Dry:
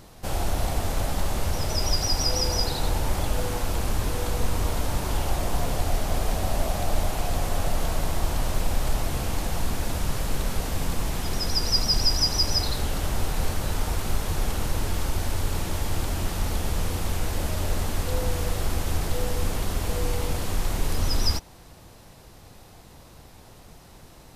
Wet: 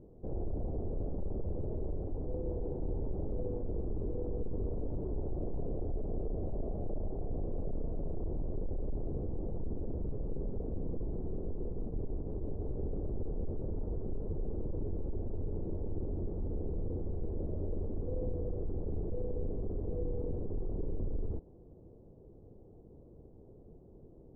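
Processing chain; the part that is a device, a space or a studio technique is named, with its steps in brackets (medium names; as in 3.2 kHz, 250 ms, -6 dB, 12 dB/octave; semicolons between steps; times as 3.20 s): overdriven synthesiser ladder filter (saturation -22 dBFS, distortion -12 dB; four-pole ladder low-pass 490 Hz, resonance 50%); trim +2.5 dB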